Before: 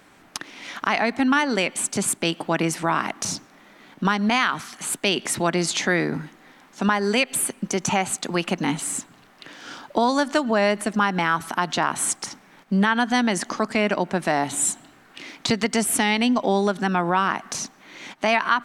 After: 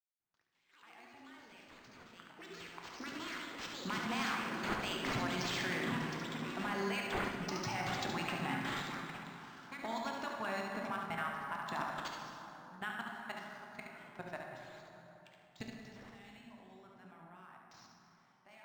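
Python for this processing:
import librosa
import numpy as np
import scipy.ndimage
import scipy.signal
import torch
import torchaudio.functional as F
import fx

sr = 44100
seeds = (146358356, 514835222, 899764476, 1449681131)

p1 = fx.fade_in_head(x, sr, length_s=5.34)
p2 = fx.doppler_pass(p1, sr, speed_mps=15, closest_m=15.0, pass_at_s=6.28)
p3 = fx.hpss(p2, sr, part='harmonic', gain_db=-9)
p4 = fx.level_steps(p3, sr, step_db=20)
p5 = fx.graphic_eq_31(p4, sr, hz=(125, 315, 500, 8000, 12500), db=(8, -8, -9, -8, 12))
p6 = fx.echo_pitch(p5, sr, ms=114, semitones=5, count=2, db_per_echo=-6.0)
p7 = p6 + fx.echo_single(p6, sr, ms=71, db=-5.5, dry=0)
p8 = fx.rev_plate(p7, sr, seeds[0], rt60_s=3.6, hf_ratio=0.45, predelay_ms=0, drr_db=0.5)
p9 = np.interp(np.arange(len(p8)), np.arange(len(p8))[::4], p8[::4])
y = F.gain(torch.from_numpy(p9), 1.0).numpy()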